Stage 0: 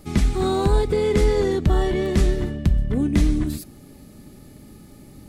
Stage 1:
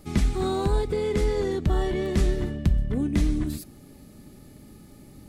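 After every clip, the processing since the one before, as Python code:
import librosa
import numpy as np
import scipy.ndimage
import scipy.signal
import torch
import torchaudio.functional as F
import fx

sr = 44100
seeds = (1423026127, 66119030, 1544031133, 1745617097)

y = fx.rider(x, sr, range_db=10, speed_s=0.5)
y = y * librosa.db_to_amplitude(-4.5)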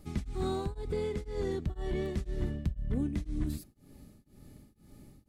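y = fx.low_shelf(x, sr, hz=150.0, db=6.5)
y = y * np.abs(np.cos(np.pi * 2.0 * np.arange(len(y)) / sr))
y = y * librosa.db_to_amplitude(-7.5)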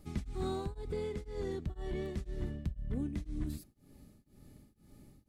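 y = fx.rider(x, sr, range_db=10, speed_s=2.0)
y = y * librosa.db_to_amplitude(-4.5)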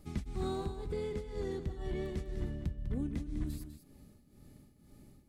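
y = x + 10.0 ** (-10.0 / 20.0) * np.pad(x, (int(200 * sr / 1000.0), 0))[:len(x)]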